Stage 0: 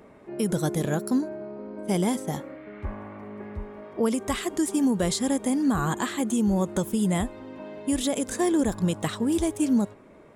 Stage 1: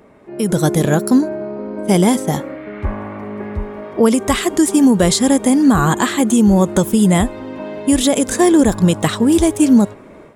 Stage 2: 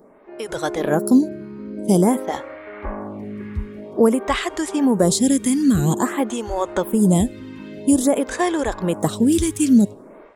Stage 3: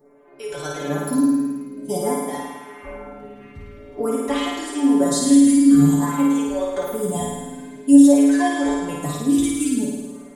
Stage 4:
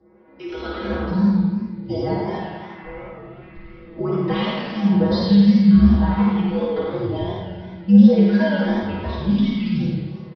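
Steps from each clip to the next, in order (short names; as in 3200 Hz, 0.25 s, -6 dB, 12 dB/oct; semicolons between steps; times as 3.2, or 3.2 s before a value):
AGC gain up to 8.5 dB; gain +3.5 dB
photocell phaser 0.5 Hz; gain -1.5 dB
metallic resonator 140 Hz, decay 0.33 s, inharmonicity 0.002; flutter echo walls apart 9.2 m, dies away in 1.3 s; gain +6.5 dB
frequency shift -78 Hz; downsampling 11025 Hz; warbling echo 86 ms, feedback 58%, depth 154 cents, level -5 dB; gain -1 dB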